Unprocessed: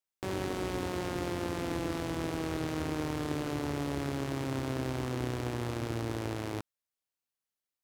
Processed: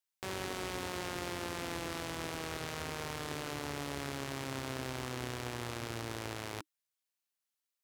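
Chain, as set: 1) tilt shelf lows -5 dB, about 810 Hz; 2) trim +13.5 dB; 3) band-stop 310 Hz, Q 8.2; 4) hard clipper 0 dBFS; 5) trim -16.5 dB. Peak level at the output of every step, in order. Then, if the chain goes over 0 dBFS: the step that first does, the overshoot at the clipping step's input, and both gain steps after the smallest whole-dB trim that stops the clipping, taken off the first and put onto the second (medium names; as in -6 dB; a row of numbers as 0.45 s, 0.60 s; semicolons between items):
-17.0 dBFS, -3.5 dBFS, -3.5 dBFS, -3.5 dBFS, -20.0 dBFS; nothing clips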